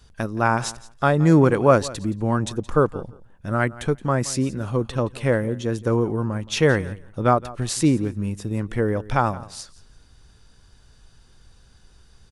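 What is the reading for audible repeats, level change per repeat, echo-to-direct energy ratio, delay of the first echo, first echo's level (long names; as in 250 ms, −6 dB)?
2, −16.0 dB, −19.0 dB, 171 ms, −19.0 dB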